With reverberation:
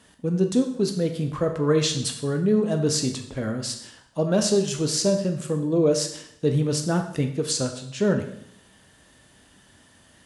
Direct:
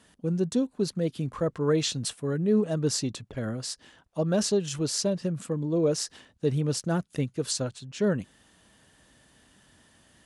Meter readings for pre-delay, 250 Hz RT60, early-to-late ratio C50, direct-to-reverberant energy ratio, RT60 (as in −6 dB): 6 ms, 0.75 s, 8.5 dB, 5.0 dB, 0.70 s